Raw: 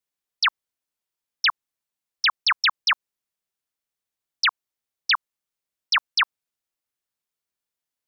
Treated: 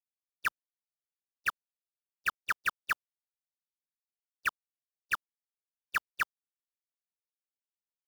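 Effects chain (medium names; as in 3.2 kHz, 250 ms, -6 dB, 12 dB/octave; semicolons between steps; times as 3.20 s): median filter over 41 samples; gate -34 dBFS, range -42 dB; trim +2 dB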